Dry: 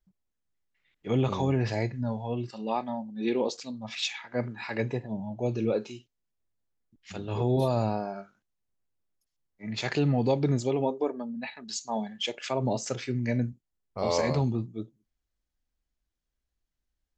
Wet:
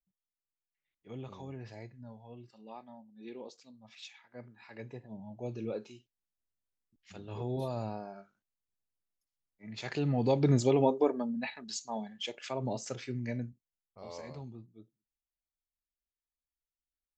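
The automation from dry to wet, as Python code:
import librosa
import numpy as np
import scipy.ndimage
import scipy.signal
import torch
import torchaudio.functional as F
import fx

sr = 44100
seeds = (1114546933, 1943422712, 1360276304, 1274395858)

y = fx.gain(x, sr, db=fx.line((4.62, -18.0), (5.29, -10.0), (9.76, -10.0), (10.59, 1.5), (11.3, 1.5), (11.99, -7.0), (13.23, -7.0), (14.0, -18.5)))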